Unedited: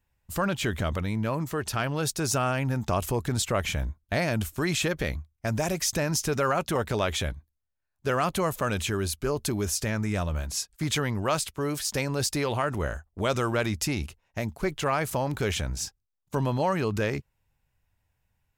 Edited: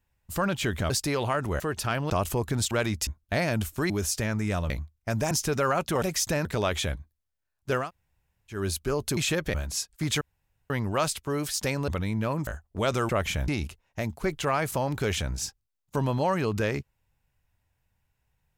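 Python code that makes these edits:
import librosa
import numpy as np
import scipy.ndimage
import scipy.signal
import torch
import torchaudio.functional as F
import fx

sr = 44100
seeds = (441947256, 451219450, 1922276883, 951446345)

y = fx.edit(x, sr, fx.swap(start_s=0.9, length_s=0.59, other_s=12.19, other_length_s=0.7),
    fx.cut(start_s=1.99, length_s=0.88),
    fx.swap(start_s=3.48, length_s=0.39, other_s=13.51, other_length_s=0.36),
    fx.swap(start_s=4.7, length_s=0.37, other_s=9.54, other_length_s=0.8),
    fx.move(start_s=5.68, length_s=0.43, to_s=6.82),
    fx.room_tone_fill(start_s=8.2, length_s=0.73, crossfade_s=0.16),
    fx.insert_room_tone(at_s=11.01, length_s=0.49), tone=tone)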